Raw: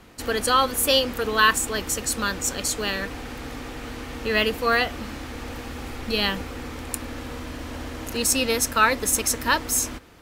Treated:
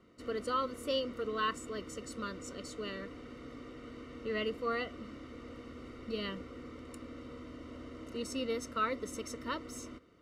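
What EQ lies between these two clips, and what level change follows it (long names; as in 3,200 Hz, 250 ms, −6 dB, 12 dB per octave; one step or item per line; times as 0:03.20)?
moving average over 53 samples
high-frequency loss of the air 63 metres
spectral tilt +4.5 dB per octave
0.0 dB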